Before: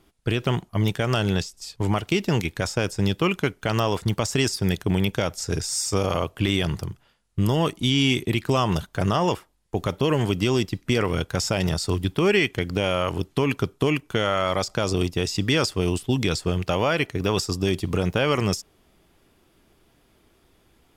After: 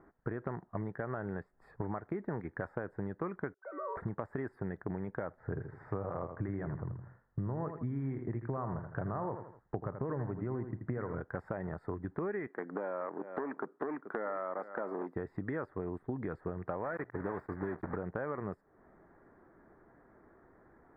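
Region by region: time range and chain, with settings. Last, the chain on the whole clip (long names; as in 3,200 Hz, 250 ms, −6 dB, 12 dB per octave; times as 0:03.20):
0:03.54–0:03.97: three sine waves on the formant tracks + tuned comb filter 190 Hz, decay 1.3 s, mix 90%
0:05.34–0:11.21: low-pass filter 2,300 Hz + parametric band 120 Hz +9 dB 0.71 octaves + repeating echo 81 ms, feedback 28%, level −9.5 dB
0:12.47–0:15.16: high-pass filter 220 Hz 24 dB per octave + single-tap delay 431 ms −17 dB + saturating transformer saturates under 950 Hz
0:16.84–0:17.97: one scale factor per block 3 bits + mains-hum notches 60/120 Hz
whole clip: elliptic low-pass filter 1,800 Hz, stop band 40 dB; low-shelf EQ 120 Hz −11.5 dB; downward compressor 5 to 1, threshold −39 dBFS; level +3 dB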